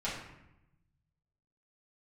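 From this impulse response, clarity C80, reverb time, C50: 6.0 dB, 0.90 s, 3.0 dB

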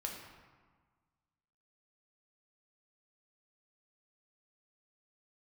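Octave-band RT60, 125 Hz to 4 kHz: 1.9 s, 1.7 s, 1.4 s, 1.6 s, 1.2 s, 0.90 s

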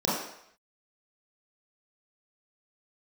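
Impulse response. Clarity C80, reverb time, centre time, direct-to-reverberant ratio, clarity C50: 4.5 dB, 0.70 s, 64 ms, -8.5 dB, 1.0 dB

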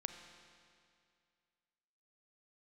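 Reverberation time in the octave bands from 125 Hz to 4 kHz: 2.3 s, 2.3 s, 2.3 s, 2.3 s, 2.2 s, 2.1 s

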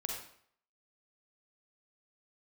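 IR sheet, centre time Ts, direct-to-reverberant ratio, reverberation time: 44 ms, 0.0 dB, 0.60 s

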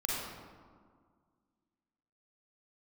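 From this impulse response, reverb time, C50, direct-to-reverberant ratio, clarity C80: 1.9 s, -2.5 dB, -5.0 dB, 0.5 dB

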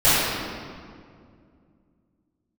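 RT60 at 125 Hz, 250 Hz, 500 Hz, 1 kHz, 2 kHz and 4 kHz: 3.2 s, 3.2 s, 2.4 s, 2.0 s, 1.7 s, 1.4 s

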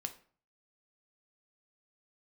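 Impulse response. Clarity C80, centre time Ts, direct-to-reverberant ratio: 18.5 dB, 7 ms, 6.5 dB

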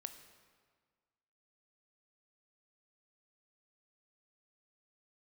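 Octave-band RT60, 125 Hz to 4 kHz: 1.7 s, 1.7 s, 1.6 s, 1.7 s, 1.5 s, 1.3 s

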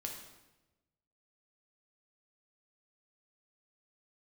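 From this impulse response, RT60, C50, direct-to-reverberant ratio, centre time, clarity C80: 1.0 s, 4.5 dB, 0.5 dB, 37 ms, 7.0 dB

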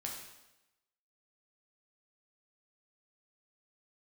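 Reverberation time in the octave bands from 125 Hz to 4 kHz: 0.90 s, 0.95 s, 1.0 s, 0.95 s, 0.90 s, 0.90 s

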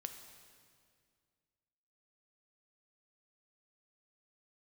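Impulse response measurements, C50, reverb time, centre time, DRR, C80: 7.5 dB, 2.1 s, 31 ms, 6.0 dB, 8.5 dB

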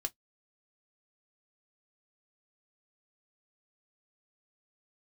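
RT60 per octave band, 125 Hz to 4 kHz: 0.15 s, 0.10 s, 0.10 s, 0.10 s, 0.10 s, 0.10 s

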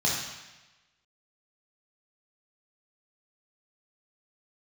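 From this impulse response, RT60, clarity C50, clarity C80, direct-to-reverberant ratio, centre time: 1.1 s, 1.5 dB, 4.0 dB, -4.0 dB, 63 ms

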